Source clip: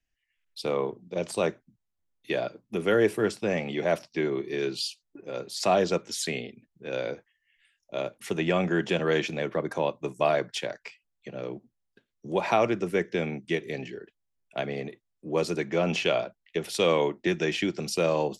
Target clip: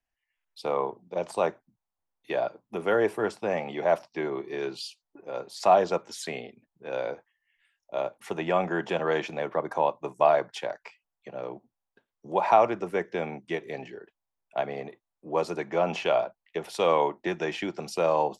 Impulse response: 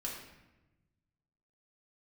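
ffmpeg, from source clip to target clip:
-af "equalizer=f=870:w=0.93:g=15,volume=-7.5dB"

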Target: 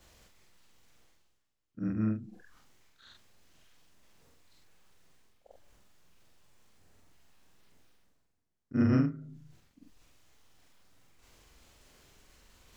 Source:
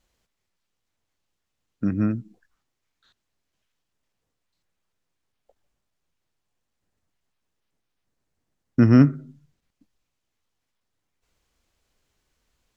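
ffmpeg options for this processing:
-af "afftfilt=real='re':imag='-im':win_size=4096:overlap=0.75,areverse,acompressor=mode=upward:threshold=-37dB:ratio=2.5,areverse,alimiter=limit=-11dB:level=0:latency=1:release=265,volume=-4.5dB"

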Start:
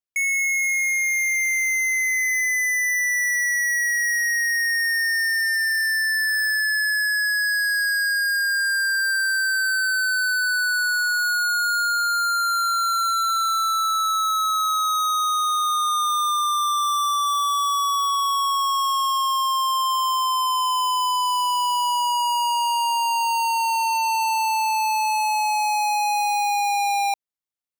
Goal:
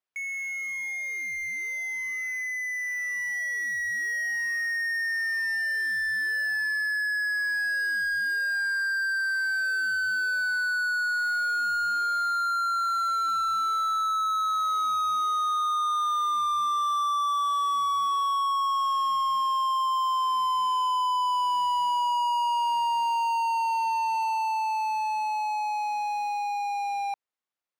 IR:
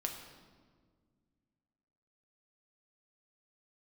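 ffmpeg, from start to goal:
-filter_complex "[0:a]asplit=2[a][b];[b]highpass=f=720:p=1,volume=21dB,asoftclip=type=tanh:threshold=-21dB[c];[a][c]amix=inputs=2:normalize=0,lowpass=f=1.4k:p=1,volume=-6dB,dynaudnorm=f=230:g=31:m=4dB,volume=-5.5dB"

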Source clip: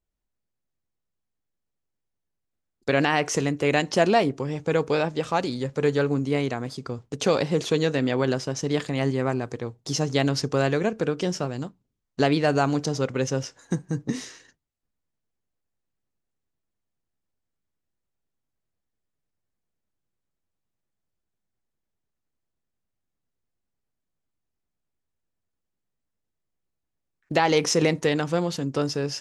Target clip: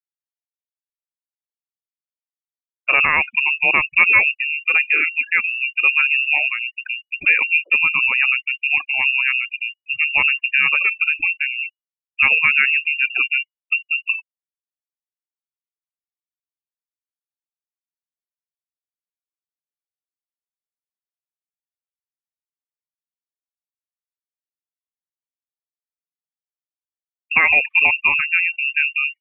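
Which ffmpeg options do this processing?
-af "afftfilt=real='re*gte(hypot(re,im),0.0562)':imag='im*gte(hypot(re,im),0.0562)':win_size=1024:overlap=0.75,bandreject=f=1.5k:w=16,lowpass=f=2.5k:t=q:w=0.5098,lowpass=f=2.5k:t=q:w=0.6013,lowpass=f=2.5k:t=q:w=0.9,lowpass=f=2.5k:t=q:w=2.563,afreqshift=-2900,volume=6dB"

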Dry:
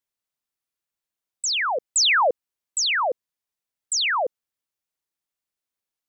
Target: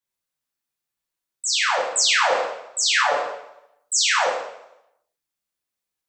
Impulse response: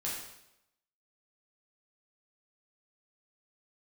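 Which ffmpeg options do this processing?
-filter_complex "[0:a]asettb=1/sr,asplit=3[a][b][c];[a]atrim=end=2.944[d];[b]atrim=start=2.94:end=3.98,asetpts=PTS-STARTPTS,afade=t=in:d=0.004:c=qsin,afade=t=out:st=1.036:d=0.004:c=qsin,aecho=1:1:6.9:0.87,atrim=end_sample=45864[e];[c]atrim=start=3.976[f];[d][e]acrossfade=d=0.004:c1=hsin:c2=qsin[g];[g][f]acrossfade=d=0.004:c1=qsin:c2=hsin[h];[1:a]atrim=start_sample=2205[i];[h][i]afir=irnorm=-1:irlink=0,alimiter=limit=-8.5dB:level=0:latency=1:release=135"

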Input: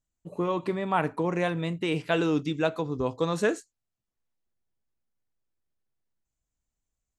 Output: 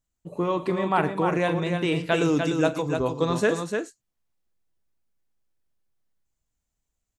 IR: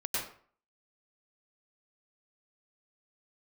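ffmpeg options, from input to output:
-filter_complex "[0:a]asettb=1/sr,asplit=3[a][b][c];[a]atrim=end=2.144[d];[b]atrim=start=2.14:end=2.99,asetpts=PTS-STARTPTS,afade=t=in:d=0.004:c=qsin,afade=t=out:st=0.846:d=0.004:c=qsin,highshelf=f=5.3k:t=q:w=1.5:g=7[e];[c]atrim=start=2.986[f];[d][e]acrossfade=d=0.004:c1=hsin:c2=qsin[g];[g][f]acrossfade=d=0.004:c1=qsin:c2=hsin,aecho=1:1:41|112|298:0.168|0.126|0.531,volume=2.5dB"

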